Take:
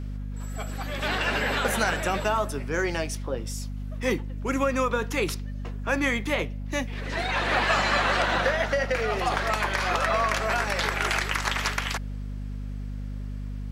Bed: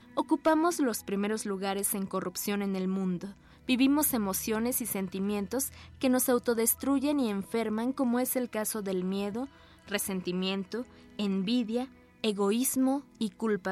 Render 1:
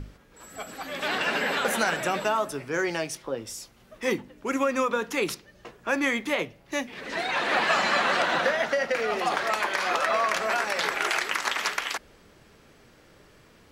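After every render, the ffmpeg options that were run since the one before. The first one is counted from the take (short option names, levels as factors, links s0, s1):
-af "bandreject=f=50:t=h:w=6,bandreject=f=100:t=h:w=6,bandreject=f=150:t=h:w=6,bandreject=f=200:t=h:w=6,bandreject=f=250:t=h:w=6"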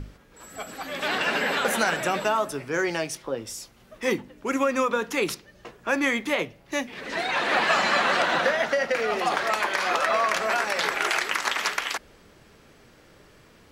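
-af "volume=1.19"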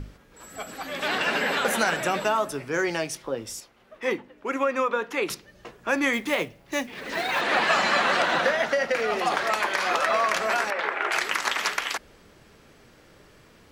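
-filter_complex "[0:a]asettb=1/sr,asplit=3[s0][s1][s2];[s0]atrim=end=3.604[s3];[s1]atrim=start=3.6:end=5.3,asetpts=PTS-STARTPTS,afade=t=in:d=0.004:c=qsin,afade=t=out:st=1.696:d=0.004:c=qsin,bass=f=250:g=-11,treble=f=4000:g=-11[s4];[s2]atrim=start=5.296[s5];[s3][s4]acrossfade=d=0.004:c1=hsin:c2=qsin[s6];[s6][s5]acrossfade=d=0.004:c1=qsin:c2=hsin,asettb=1/sr,asplit=3[s7][s8][s9];[s7]atrim=end=6.134[s10];[s8]atrim=start=6.13:end=7.41,asetpts=PTS-STARTPTS,afade=t=in:d=0.004:c=qsin,afade=t=out:st=1.276:d=0.004:c=qsin,acrusher=bits=5:mode=log:mix=0:aa=0.000001[s11];[s9]atrim=start=7.406[s12];[s10][s11]acrossfade=d=0.004:c1=hsin:c2=qsin[s13];[s13][s12]acrossfade=d=0.004:c1=qsin:c2=hsin,asettb=1/sr,asplit=3[s14][s15][s16];[s14]atrim=end=10.704[s17];[s15]atrim=start=10.7:end=11.12,asetpts=PTS-STARTPTS,afade=t=in:d=0.004:c=qsin,afade=t=out:st=0.416:d=0.004:c=qsin,acrossover=split=260 2700:gain=0.126 1 0.0794[s18][s19][s20];[s18][s19][s20]amix=inputs=3:normalize=0[s21];[s16]atrim=start=11.116[s22];[s17][s21]acrossfade=d=0.004:c1=hsin:c2=qsin[s23];[s23][s22]acrossfade=d=0.004:c1=qsin:c2=hsin"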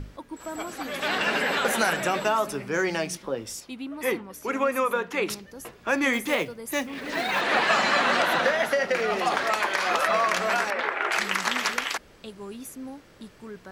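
-filter_complex "[1:a]volume=0.266[s0];[0:a][s0]amix=inputs=2:normalize=0"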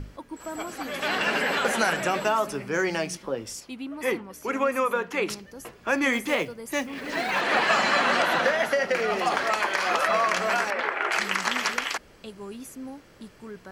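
-filter_complex "[0:a]acrossover=split=9800[s0][s1];[s1]acompressor=threshold=0.00398:ratio=4:attack=1:release=60[s2];[s0][s2]amix=inputs=2:normalize=0,bandreject=f=3700:w=16"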